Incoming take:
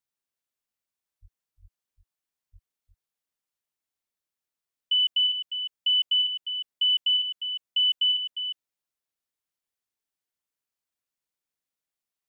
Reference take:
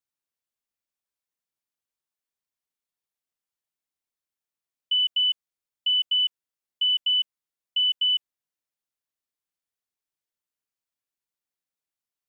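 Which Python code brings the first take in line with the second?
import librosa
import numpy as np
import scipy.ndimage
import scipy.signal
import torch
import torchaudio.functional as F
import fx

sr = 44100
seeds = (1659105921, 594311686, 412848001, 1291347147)

y = fx.fix_deplosive(x, sr, at_s=(1.21, 1.61, 2.52))
y = fx.fix_echo_inverse(y, sr, delay_ms=354, level_db=-9.0)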